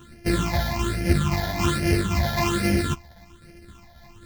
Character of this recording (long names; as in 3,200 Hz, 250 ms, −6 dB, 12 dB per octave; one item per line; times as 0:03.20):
a buzz of ramps at a fixed pitch in blocks of 128 samples
phaser sweep stages 8, 1.2 Hz, lowest notch 350–1,100 Hz
tremolo saw down 3.8 Hz, depth 45%
a shimmering, thickened sound